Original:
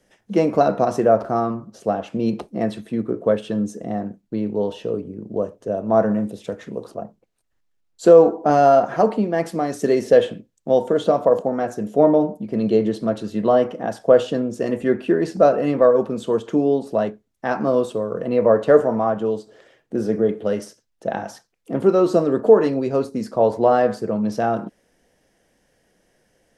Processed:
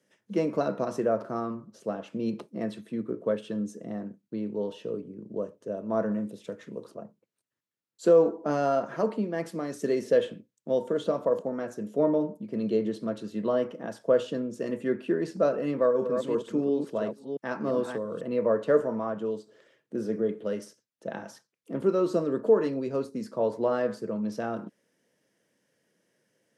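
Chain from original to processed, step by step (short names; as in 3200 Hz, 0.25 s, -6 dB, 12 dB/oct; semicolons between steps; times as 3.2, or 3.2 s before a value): 15.67–18.21 reverse delay 0.34 s, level -6 dB; HPF 120 Hz 24 dB/oct; bell 750 Hz -12 dB 0.22 oct; gain -8.5 dB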